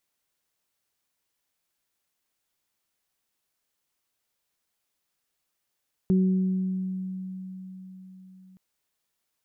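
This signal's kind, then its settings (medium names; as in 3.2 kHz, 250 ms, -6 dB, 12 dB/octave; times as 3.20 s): additive tone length 2.47 s, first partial 187 Hz, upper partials -9 dB, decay 4.59 s, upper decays 1.54 s, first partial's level -17.5 dB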